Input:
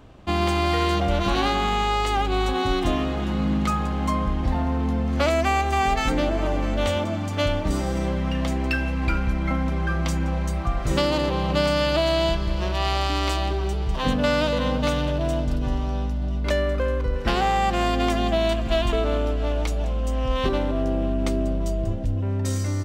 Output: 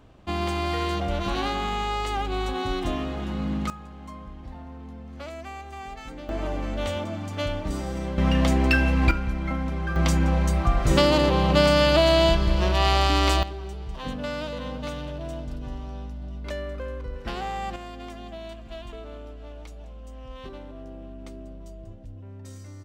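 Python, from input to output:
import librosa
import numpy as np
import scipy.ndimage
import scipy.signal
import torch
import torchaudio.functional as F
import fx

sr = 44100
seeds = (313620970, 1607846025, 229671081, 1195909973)

y = fx.gain(x, sr, db=fx.steps((0.0, -5.0), (3.7, -17.0), (6.29, -5.5), (8.18, 4.0), (9.11, -4.0), (9.96, 3.0), (13.43, -10.0), (17.76, -17.0)))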